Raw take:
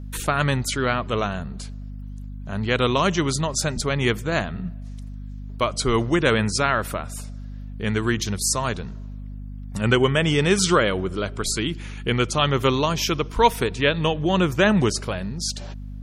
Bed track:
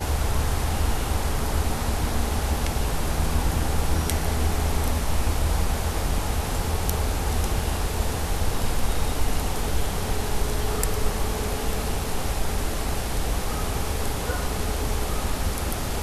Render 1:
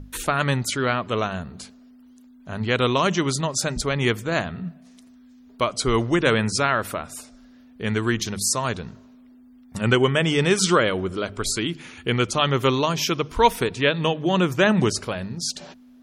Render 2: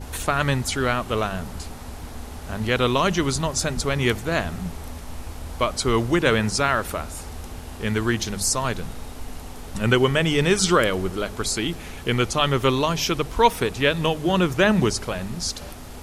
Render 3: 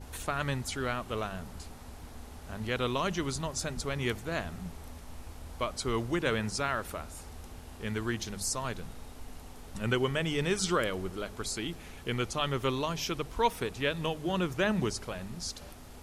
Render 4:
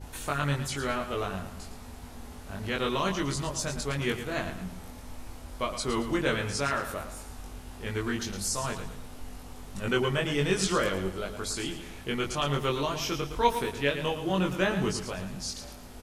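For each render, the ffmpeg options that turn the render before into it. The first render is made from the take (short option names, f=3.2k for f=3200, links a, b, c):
-af "bandreject=f=50:t=h:w=6,bandreject=f=100:t=h:w=6,bandreject=f=150:t=h:w=6,bandreject=f=200:t=h:w=6"
-filter_complex "[1:a]volume=-11.5dB[a];[0:a][a]amix=inputs=2:normalize=0"
-af "volume=-10.5dB"
-filter_complex "[0:a]asplit=2[a][b];[b]adelay=21,volume=-2dB[c];[a][c]amix=inputs=2:normalize=0,aecho=1:1:112|224|336|448:0.316|0.117|0.0433|0.016"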